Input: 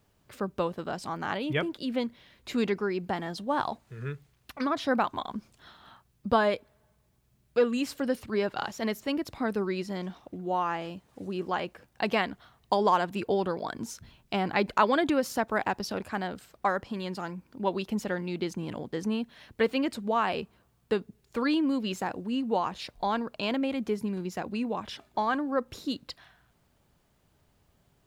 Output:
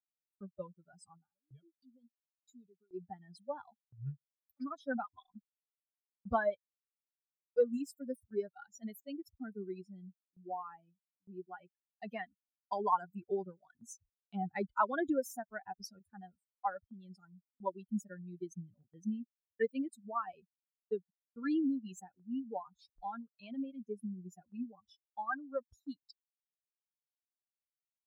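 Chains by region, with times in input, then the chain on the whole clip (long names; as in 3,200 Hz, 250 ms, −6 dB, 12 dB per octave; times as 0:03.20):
0:01.17–0:02.94: downward compressor 2 to 1, threshold −39 dBFS + parametric band 1,900 Hz −5.5 dB 0.97 octaves
whole clip: spectral dynamics exaggerated over time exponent 3; noise gate with hold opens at −57 dBFS; flat-topped bell 3,200 Hz −14 dB 1.3 octaves; level −2 dB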